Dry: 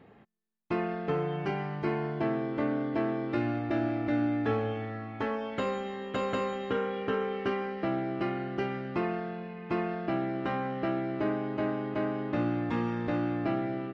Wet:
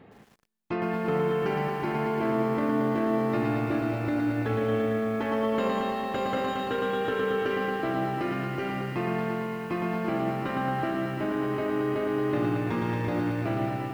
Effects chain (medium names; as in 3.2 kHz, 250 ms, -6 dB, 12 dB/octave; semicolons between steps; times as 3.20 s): peak limiter -24.5 dBFS, peak gain reduction 6.5 dB; bit-crushed delay 113 ms, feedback 80%, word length 10-bit, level -4 dB; trim +3.5 dB